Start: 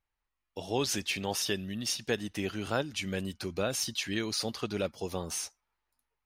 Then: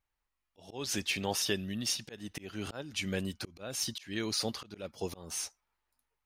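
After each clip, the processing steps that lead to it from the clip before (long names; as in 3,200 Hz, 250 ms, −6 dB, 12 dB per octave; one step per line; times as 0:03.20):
volume swells 278 ms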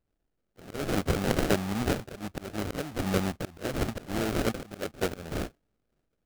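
dynamic equaliser 690 Hz, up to +4 dB, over −50 dBFS, Q 1.9
sample-rate reduction 1,000 Hz, jitter 20%
level +6 dB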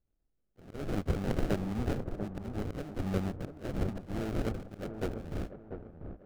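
spectral tilt −2 dB per octave
on a send: delay with a low-pass on its return 692 ms, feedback 32%, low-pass 1,200 Hz, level −7.5 dB
on the sum: level −9 dB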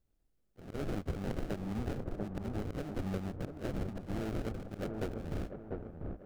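downward compressor 5 to 1, threshold −36 dBFS, peak gain reduction 12 dB
level +3 dB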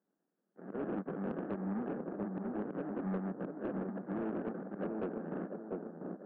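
Chebyshev band-pass filter 180–1,700 Hz, order 4
soft clipping −33.5 dBFS, distortion −15 dB
level +4 dB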